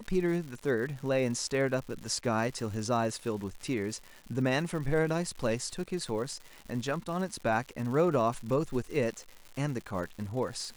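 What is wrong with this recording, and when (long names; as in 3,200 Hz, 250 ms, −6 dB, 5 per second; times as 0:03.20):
surface crackle 230 per second −39 dBFS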